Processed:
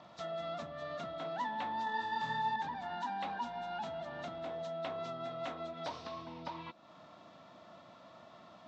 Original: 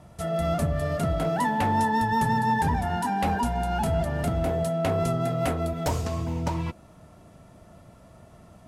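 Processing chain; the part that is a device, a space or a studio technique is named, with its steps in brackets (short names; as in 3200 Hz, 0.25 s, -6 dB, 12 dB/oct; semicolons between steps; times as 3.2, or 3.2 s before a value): hearing aid with frequency lowering (nonlinear frequency compression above 3600 Hz 1.5:1; compressor 2.5:1, threshold -40 dBFS, peak gain reduction 13.5 dB; speaker cabinet 310–5100 Hz, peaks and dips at 420 Hz -10 dB, 1100 Hz +5 dB, 3700 Hz +9 dB); 1.84–2.56 flutter echo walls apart 4.3 m, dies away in 0.6 s; gain -1 dB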